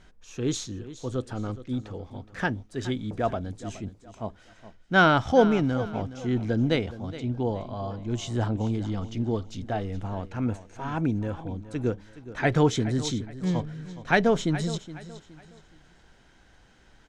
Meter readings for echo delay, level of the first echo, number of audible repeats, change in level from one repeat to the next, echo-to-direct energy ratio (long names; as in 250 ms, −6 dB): 419 ms, −15.0 dB, 3, −9.5 dB, −14.5 dB